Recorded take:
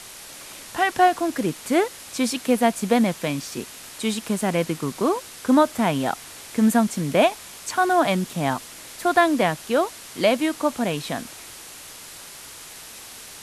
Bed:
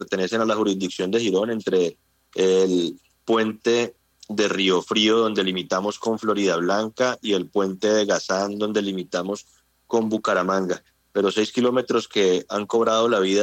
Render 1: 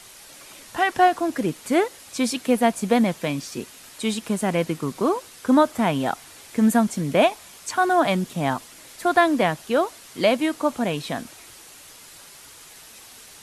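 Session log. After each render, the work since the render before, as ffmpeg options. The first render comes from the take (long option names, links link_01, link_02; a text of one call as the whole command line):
ffmpeg -i in.wav -af "afftdn=noise_reduction=6:noise_floor=-41" out.wav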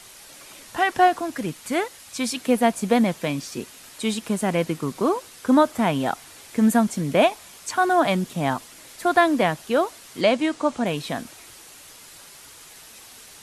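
ffmpeg -i in.wav -filter_complex "[0:a]asettb=1/sr,asplit=3[link_01][link_02][link_03];[link_01]atrim=end=1.214[link_04];[link_02]atrim=start=1.21:end=2.37,asetpts=PTS-STARTPTS,afade=type=in:duration=0.004:curve=qsin,afade=type=out:start_time=1.156:duration=0.004:curve=qsin,equalizer=frequency=390:width_type=o:width=1.7:gain=-6[link_05];[link_03]atrim=start=2.366[link_06];[link_04][link_05]acrossfade=duration=0.004:curve1=hsin:curve2=qsin[link_07];[link_07][link_06]acrossfade=duration=0.004:curve1=qsin:curve2=hsin,asettb=1/sr,asplit=3[link_08][link_09][link_10];[link_08]atrim=end=10.214[link_11];[link_09]atrim=start=10.21:end=10.86,asetpts=PTS-STARTPTS,afade=type=in:duration=0.004:curve=qsin,afade=type=out:start_time=0.646:duration=0.004:curve=qsin,lowpass=frequency=8800:width=0.5412,lowpass=frequency=8800:width=1.3066[link_12];[link_10]atrim=start=10.856[link_13];[link_11][link_12]acrossfade=duration=0.004:curve1=hsin:curve2=qsin[link_14];[link_14][link_13]acrossfade=duration=0.004:curve1=qsin:curve2=hsin" out.wav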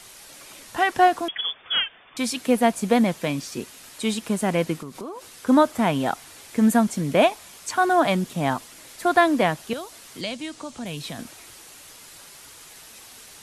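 ffmpeg -i in.wav -filter_complex "[0:a]asettb=1/sr,asplit=3[link_01][link_02][link_03];[link_01]atrim=end=1.284[link_04];[link_02]atrim=start=1.28:end=2.17,asetpts=PTS-STARTPTS,afade=type=in:duration=0.004:curve=qsin,afade=type=out:start_time=0.886:duration=0.004:curve=qsin,lowpass=frequency=3100:width_type=q:width=0.5098,lowpass=frequency=3100:width_type=q:width=0.6013,lowpass=frequency=3100:width_type=q:width=0.9,lowpass=frequency=3100:width_type=q:width=2.563,afreqshift=-3600[link_05];[link_03]atrim=start=2.166[link_06];[link_04][link_05]acrossfade=duration=0.004:curve1=hsin:curve2=qsin[link_07];[link_07][link_06]acrossfade=duration=0.004:curve1=qsin:curve2=hsin,asettb=1/sr,asplit=3[link_08][link_09][link_10];[link_08]atrim=end=4.774[link_11];[link_09]atrim=start=4.77:end=5.47,asetpts=PTS-STARTPTS,afade=type=in:duration=0.004:curve=qsin,afade=type=out:start_time=0.696:duration=0.004:curve=qsin,acompressor=threshold=-32dB:ratio=6:attack=3.2:release=140:knee=1:detection=peak[link_12];[link_10]atrim=start=5.466[link_13];[link_11][link_12]acrossfade=duration=0.004:curve1=hsin:curve2=qsin[link_14];[link_14][link_13]acrossfade=duration=0.004:curve1=qsin:curve2=hsin,asettb=1/sr,asplit=3[link_15][link_16][link_17];[link_15]atrim=end=9.734[link_18];[link_16]atrim=start=9.73:end=11.19,asetpts=PTS-STARTPTS,afade=type=in:duration=0.004:curve=qsin,afade=type=out:start_time=1.456:duration=0.004:curve=qsin,acrossover=split=160|3000[link_19][link_20][link_21];[link_20]acompressor=threshold=-39dB:ratio=2.5:attack=3.2:release=140:knee=2.83:detection=peak[link_22];[link_19][link_22][link_21]amix=inputs=3:normalize=0[link_23];[link_17]atrim=start=11.186[link_24];[link_18][link_23]acrossfade=duration=0.004:curve1=hsin:curve2=qsin[link_25];[link_25][link_24]acrossfade=duration=0.004:curve1=qsin:curve2=hsin" out.wav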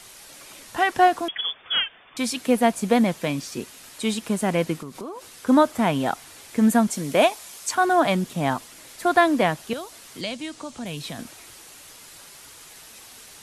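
ffmpeg -i in.wav -filter_complex "[0:a]asettb=1/sr,asplit=3[link_01][link_02][link_03];[link_01]atrim=end=6.904[link_04];[link_02]atrim=start=6.9:end=7.75,asetpts=PTS-STARTPTS,afade=type=in:duration=0.004:curve=qsin,afade=type=out:start_time=0.846:duration=0.004:curve=qsin,bass=frequency=250:gain=-6,treble=frequency=4000:gain=5[link_05];[link_03]atrim=start=7.746[link_06];[link_04][link_05]acrossfade=duration=0.004:curve1=hsin:curve2=qsin[link_07];[link_07][link_06]acrossfade=duration=0.004:curve1=qsin:curve2=hsin" out.wav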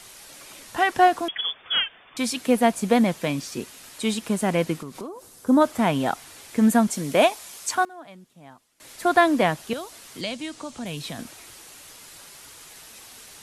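ffmpeg -i in.wav -filter_complex "[0:a]asplit=3[link_01][link_02][link_03];[link_01]afade=type=out:start_time=5.06:duration=0.02[link_04];[link_02]equalizer=frequency=2500:width_type=o:width=2.2:gain=-12.5,afade=type=in:start_time=5.06:duration=0.02,afade=type=out:start_time=5.6:duration=0.02[link_05];[link_03]afade=type=in:start_time=5.6:duration=0.02[link_06];[link_04][link_05][link_06]amix=inputs=3:normalize=0,asplit=3[link_07][link_08][link_09];[link_07]atrim=end=7.85,asetpts=PTS-STARTPTS,afade=type=out:start_time=7.59:duration=0.26:curve=log:silence=0.0668344[link_10];[link_08]atrim=start=7.85:end=8.8,asetpts=PTS-STARTPTS,volume=-23.5dB[link_11];[link_09]atrim=start=8.8,asetpts=PTS-STARTPTS,afade=type=in:duration=0.26:curve=log:silence=0.0668344[link_12];[link_10][link_11][link_12]concat=n=3:v=0:a=1" out.wav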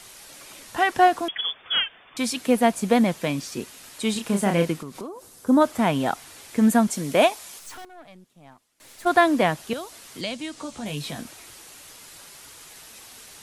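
ffmpeg -i in.wav -filter_complex "[0:a]asettb=1/sr,asplit=3[link_01][link_02][link_03];[link_01]atrim=end=4.134[link_04];[link_02]atrim=start=4.13:end=4.72,asetpts=PTS-STARTPTS,afade=type=in:duration=0.004:curve=qsin,afade=type=out:start_time=0.586:duration=0.004:curve=qsin,asplit=2[link_05][link_06];[link_06]adelay=30,volume=-5dB[link_07];[link_05][link_07]amix=inputs=2:normalize=0,atrim=end_sample=26019[link_08];[link_03]atrim=start=4.716[link_09];[link_04][link_08]acrossfade=duration=0.004:curve1=hsin:curve2=qsin[link_10];[link_10][link_09]acrossfade=duration=0.004:curve1=qsin:curve2=hsin,asplit=3[link_11][link_12][link_13];[link_11]afade=type=out:start_time=7.58:duration=0.02[link_14];[link_12]aeval=exprs='(tanh(89.1*val(0)+0.6)-tanh(0.6))/89.1':channel_layout=same,afade=type=in:start_time=7.58:duration=0.02,afade=type=out:start_time=9.05:duration=0.02[link_15];[link_13]afade=type=in:start_time=9.05:duration=0.02[link_16];[link_14][link_15][link_16]amix=inputs=3:normalize=0,asettb=1/sr,asplit=3[link_17][link_18][link_19];[link_17]atrim=end=10.554[link_20];[link_18]atrim=start=10.55:end=11.19,asetpts=PTS-STARTPTS,afade=type=in:duration=0.004:curve=qsin,afade=type=out:start_time=0.636:duration=0.004:curve=qsin,asplit=2[link_21][link_22];[link_22]adelay=14,volume=-5dB[link_23];[link_21][link_23]amix=inputs=2:normalize=0,atrim=end_sample=28224[link_24];[link_19]atrim=start=11.186[link_25];[link_20][link_24]acrossfade=duration=0.004:curve1=hsin:curve2=qsin[link_26];[link_26][link_25]acrossfade=duration=0.004:curve1=qsin:curve2=hsin" out.wav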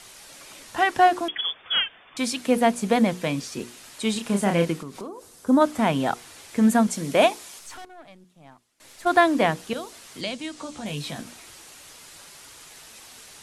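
ffmpeg -i in.wav -af "lowpass=11000,bandreject=frequency=60:width_type=h:width=6,bandreject=frequency=120:width_type=h:width=6,bandreject=frequency=180:width_type=h:width=6,bandreject=frequency=240:width_type=h:width=6,bandreject=frequency=300:width_type=h:width=6,bandreject=frequency=360:width_type=h:width=6,bandreject=frequency=420:width_type=h:width=6,bandreject=frequency=480:width_type=h:width=6" out.wav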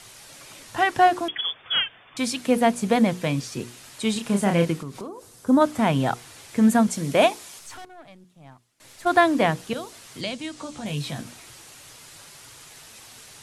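ffmpeg -i in.wav -af "equalizer=frequency=120:width_type=o:width=0.54:gain=10.5" out.wav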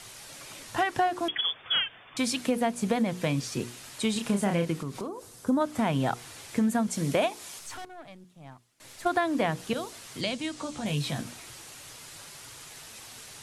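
ffmpeg -i in.wav -af "acompressor=threshold=-23dB:ratio=5" out.wav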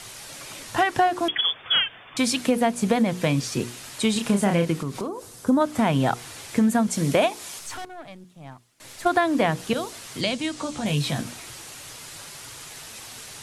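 ffmpeg -i in.wav -af "volume=5.5dB" out.wav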